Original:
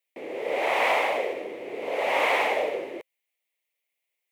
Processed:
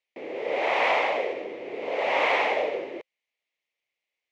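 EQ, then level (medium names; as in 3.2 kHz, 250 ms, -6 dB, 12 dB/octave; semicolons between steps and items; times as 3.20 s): low-pass 5.9 kHz 24 dB/octave; 0.0 dB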